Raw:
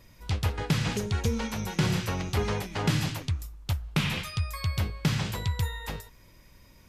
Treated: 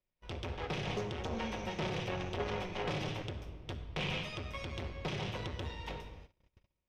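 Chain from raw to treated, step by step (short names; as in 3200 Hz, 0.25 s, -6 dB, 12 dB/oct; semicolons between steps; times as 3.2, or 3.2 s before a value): minimum comb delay 0.34 ms; tilt -2 dB/oct; soft clip -24.5 dBFS, distortion -8 dB; three-band isolator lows -16 dB, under 400 Hz, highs -21 dB, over 5500 Hz; shoebox room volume 2400 m³, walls mixed, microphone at 1 m; gate -52 dBFS, range -30 dB; gain +1 dB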